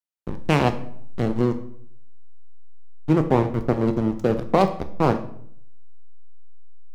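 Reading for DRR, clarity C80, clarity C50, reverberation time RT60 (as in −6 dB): 8.0 dB, 15.5 dB, 12.0 dB, 0.65 s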